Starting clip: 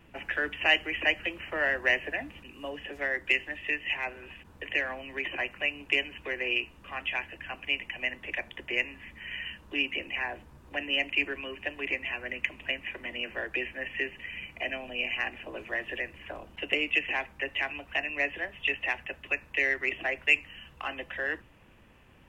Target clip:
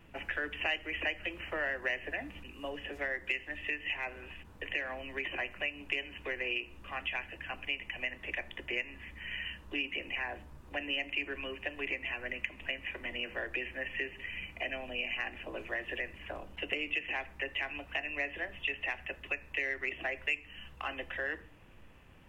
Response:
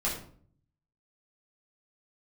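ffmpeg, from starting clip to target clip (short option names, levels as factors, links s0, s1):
-filter_complex "[0:a]asplit=2[s0][s1];[1:a]atrim=start_sample=2205,lowshelf=f=120:g=11.5[s2];[s1][s2]afir=irnorm=-1:irlink=0,volume=0.0668[s3];[s0][s3]amix=inputs=2:normalize=0,acompressor=threshold=0.0282:ratio=2.5,volume=0.794"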